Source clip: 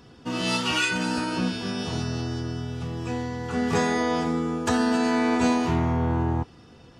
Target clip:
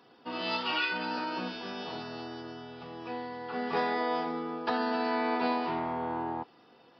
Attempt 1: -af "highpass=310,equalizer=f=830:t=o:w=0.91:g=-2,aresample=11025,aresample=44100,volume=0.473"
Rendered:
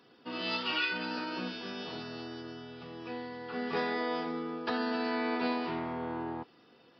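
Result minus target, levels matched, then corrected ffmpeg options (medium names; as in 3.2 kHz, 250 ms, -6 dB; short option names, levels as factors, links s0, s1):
1 kHz band -3.5 dB
-af "highpass=310,equalizer=f=830:t=o:w=0.91:g=5,aresample=11025,aresample=44100,volume=0.473"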